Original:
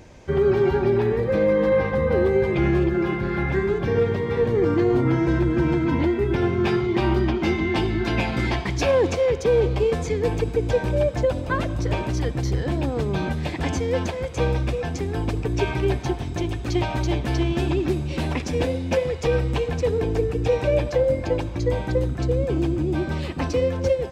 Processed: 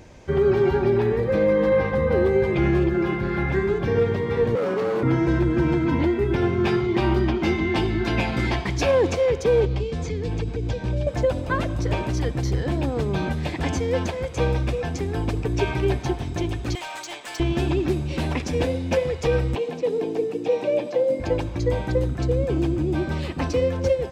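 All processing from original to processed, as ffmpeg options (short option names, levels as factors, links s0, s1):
-filter_complex "[0:a]asettb=1/sr,asplit=3[s0][s1][s2];[s0]atrim=end=4.554[s3];[s1]atrim=start=4.55:end=5.03,asetpts=PTS-STARTPTS,afade=t=in:d=0.004:c=qsin,afade=t=out:st=0.476:d=0.004:c=qsin,lowshelf=f=160:g=-5,asoftclip=type=hard:threshold=0.0891,afreqshift=87[s4];[s2]atrim=start=5.026[s5];[s3][s4]acrossfade=d=0.004:c1=hsin:c2=qsin[s6];[s6][s5]acrossfade=d=0.004:c1=qsin:c2=hsin,asettb=1/sr,asplit=3[s7][s8][s9];[s7]atrim=end=9.654[s10];[s8]atrim=start=9.65:end=11.07,asetpts=PTS-STARTPTS,afade=t=in:d=0.004:c=qsin,afade=t=out:st=1.416:d=0.004:c=qsin,acrossover=split=280|3000[s11][s12][s13];[s12]acompressor=threshold=0.0224:ratio=6:attack=3.2:release=140:knee=2.83:detection=peak[s14];[s11][s14][s13]amix=inputs=3:normalize=0,lowpass=5800[s15];[s9]atrim=start=11.066[s16];[s10][s15]acrossfade=d=0.004:c1=hsin:c2=qsin[s17];[s17][s16]acrossfade=d=0.004:c1=qsin:c2=hsin,asettb=1/sr,asplit=3[s18][s19][s20];[s18]atrim=end=16.754[s21];[s19]atrim=start=16.75:end=17.4,asetpts=PTS-STARTPTS,afade=t=in:d=0.004:c=qsin,afade=t=out:st=0.646:d=0.004:c=qsin,highpass=930,equalizer=f=7800:t=o:w=0.43:g=10.5,asoftclip=type=hard:threshold=0.0335[s22];[s20]atrim=start=17.396[s23];[s21][s22]acrossfade=d=0.004:c1=hsin:c2=qsin[s24];[s24][s23]acrossfade=d=0.004:c1=qsin:c2=hsin,asettb=1/sr,asplit=3[s25][s26][s27];[s25]atrim=end=19.554[s28];[s26]atrim=start=19.55:end=21.2,asetpts=PTS-STARTPTS,afade=t=in:d=0.004:c=qsin,afade=t=out:st=1.646:d=0.004:c=qsin,highpass=f=200:w=0.5412,highpass=f=200:w=1.3066,acrossover=split=3700[s29][s30];[s30]acompressor=threshold=0.00282:ratio=4:attack=1:release=60[s31];[s29][s31]amix=inputs=2:normalize=0,equalizer=f=1500:t=o:w=1.1:g=-8.5[s32];[s27]atrim=start=21.196[s33];[s28][s32]acrossfade=d=0.004:c1=hsin:c2=qsin[s34];[s34][s33]acrossfade=d=0.004:c1=qsin:c2=hsin"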